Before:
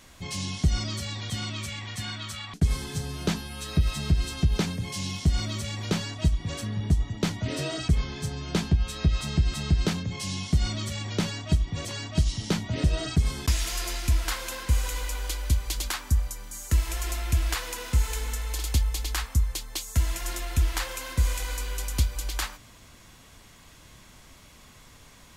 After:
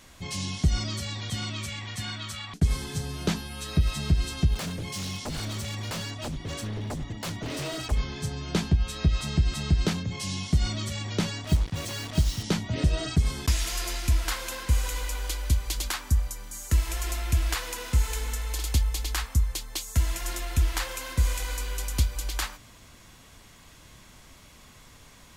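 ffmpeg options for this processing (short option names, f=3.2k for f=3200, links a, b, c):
-filter_complex "[0:a]asplit=3[a][b][c];[a]afade=t=out:st=4.54:d=0.02[d];[b]aeval=exprs='0.0422*(abs(mod(val(0)/0.0422+3,4)-2)-1)':c=same,afade=t=in:st=4.54:d=0.02,afade=t=out:st=7.91:d=0.02[e];[c]afade=t=in:st=7.91:d=0.02[f];[d][e][f]amix=inputs=3:normalize=0,asettb=1/sr,asplit=3[g][h][i];[g]atrim=end=11.444[j];[h]atrim=start=11.44:end=12.43,asetpts=PTS-STARTPTS,afade=t=in:d=0.004:c=qsin,afade=t=out:st=0.986:d=0.004:c=qsin,acrusher=bits=5:mix=0:aa=0.5[k];[i]atrim=start=12.426[l];[j][k]acrossfade=d=0.004:c1=hsin:c2=qsin[m];[m][l]acrossfade=d=0.004:c1=qsin:c2=hsin"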